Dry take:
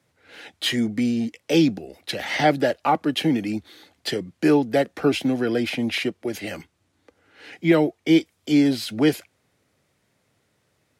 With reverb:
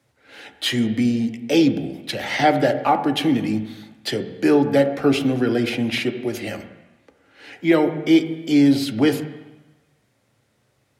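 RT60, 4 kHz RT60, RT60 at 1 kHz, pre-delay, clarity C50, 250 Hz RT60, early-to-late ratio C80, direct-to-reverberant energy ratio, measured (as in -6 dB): 1.1 s, 1.2 s, 1.2 s, 3 ms, 10.5 dB, 1.0 s, 12.0 dB, 6.5 dB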